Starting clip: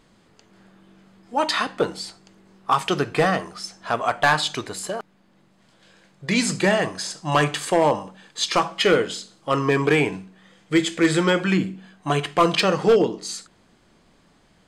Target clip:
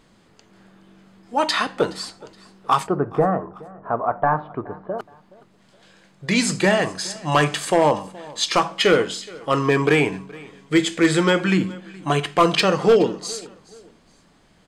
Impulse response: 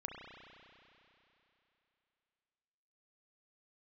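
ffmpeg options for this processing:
-filter_complex "[0:a]asplit=3[link_01][link_02][link_03];[link_01]afade=type=out:start_time=2.86:duration=0.02[link_04];[link_02]lowpass=frequency=1200:width=0.5412,lowpass=frequency=1200:width=1.3066,afade=type=in:start_time=2.86:duration=0.02,afade=type=out:start_time=4.98:duration=0.02[link_05];[link_03]afade=type=in:start_time=4.98:duration=0.02[link_06];[link_04][link_05][link_06]amix=inputs=3:normalize=0,aecho=1:1:421|842:0.0794|0.0262,volume=1.5dB"

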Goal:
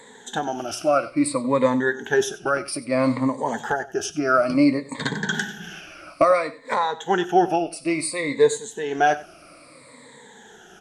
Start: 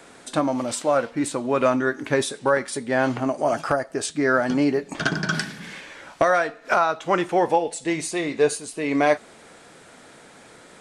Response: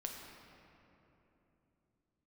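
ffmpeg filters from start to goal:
-af "afftfilt=real='re*pow(10,19/40*sin(2*PI*(1*log(max(b,1)*sr/1024/100)/log(2)-(-0.59)*(pts-256)/sr)))':imag='im*pow(10,19/40*sin(2*PI*(1*log(max(b,1)*sr/1024/100)/log(2)-(-0.59)*(pts-256)/sr)))':win_size=1024:overlap=0.75,bandreject=frequency=60:width_type=h:width=6,bandreject=frequency=120:width_type=h:width=6,aecho=1:1:94:0.126,volume=-3.5dB"

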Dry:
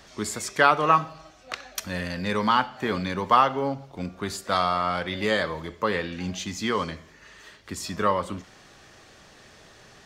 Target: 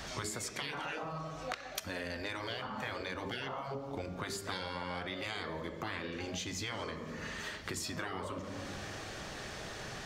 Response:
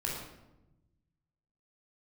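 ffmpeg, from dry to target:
-filter_complex "[0:a]asplit=2[link_01][link_02];[1:a]atrim=start_sample=2205,asetrate=40572,aresample=44100,lowpass=4000[link_03];[link_02][link_03]afir=irnorm=-1:irlink=0,volume=-15dB[link_04];[link_01][link_04]amix=inputs=2:normalize=0,afftfilt=real='re*lt(hypot(re,im),0.178)':imag='im*lt(hypot(re,im),0.178)':win_size=1024:overlap=0.75,adynamicequalizer=threshold=0.00447:dfrequency=490:dqfactor=1.5:tfrequency=490:tqfactor=1.5:attack=5:release=100:ratio=0.375:range=1.5:mode=boostabove:tftype=bell,acompressor=threshold=-43dB:ratio=10,volume=6.5dB"

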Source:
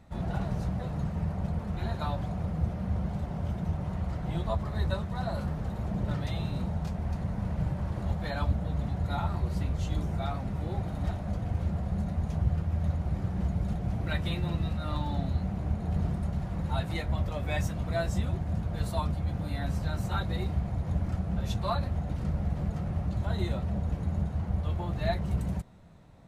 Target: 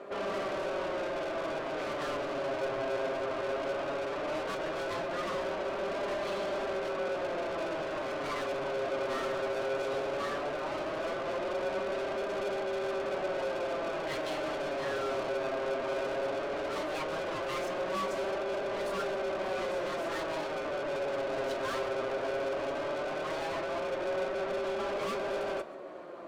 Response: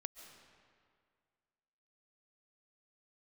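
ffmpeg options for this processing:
-filter_complex "[0:a]highshelf=frequency=2800:gain=-11.5,aeval=exprs='val(0)*sin(2*PI*470*n/s)':channel_layout=same,asplit=2[link_01][link_02];[link_02]highpass=frequency=720:poles=1,volume=37dB,asoftclip=type=tanh:threshold=-15dB[link_03];[link_01][link_03]amix=inputs=2:normalize=0,lowpass=frequency=5500:poles=1,volume=-6dB,flanger=delay=5:depth=2.5:regen=48:speed=0.16:shape=sinusoidal[link_04];[1:a]atrim=start_sample=2205,atrim=end_sample=6174[link_05];[link_04][link_05]afir=irnorm=-1:irlink=0,volume=-4dB"

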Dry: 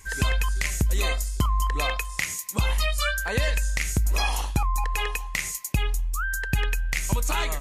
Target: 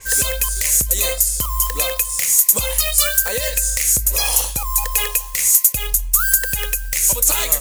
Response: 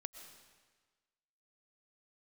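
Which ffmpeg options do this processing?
-filter_complex "[0:a]acrossover=split=660|5400[link_01][link_02][link_03];[link_02]acrusher=bits=3:mode=log:mix=0:aa=0.000001[link_04];[link_01][link_04][link_03]amix=inputs=3:normalize=0,equalizer=frequency=520:width_type=o:width=0.38:gain=14,alimiter=limit=-18dB:level=0:latency=1:release=263,crystalizer=i=5:c=0,asoftclip=type=tanh:threshold=-11dB,adynamicequalizer=threshold=0.0158:dfrequency=5800:dqfactor=0.7:tfrequency=5800:tqfactor=0.7:attack=5:release=100:ratio=0.375:range=3:mode=boostabove:tftype=highshelf,volume=2.5dB"

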